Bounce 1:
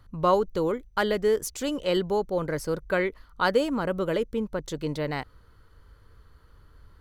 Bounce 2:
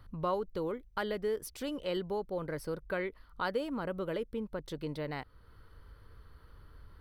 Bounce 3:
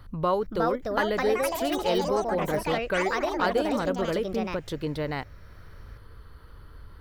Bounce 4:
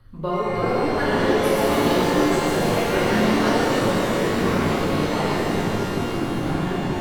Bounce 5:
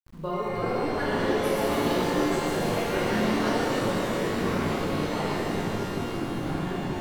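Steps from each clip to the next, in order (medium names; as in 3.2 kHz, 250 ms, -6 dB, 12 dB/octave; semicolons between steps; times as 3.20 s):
compression 1.5:1, threshold -49 dBFS, peak gain reduction 11.5 dB; peaking EQ 6.9 kHz -13.5 dB 0.36 oct
ever faster or slower copies 412 ms, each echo +4 st, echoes 3; trim +7.5 dB
rotary cabinet horn 6.7 Hz, later 1.2 Hz, at 3.04 s; ever faster or slower copies 284 ms, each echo -6 st, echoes 3; pitch-shifted reverb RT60 2.9 s, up +12 st, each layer -8 dB, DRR -8.5 dB; trim -4 dB
small samples zeroed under -43.5 dBFS; trim -6 dB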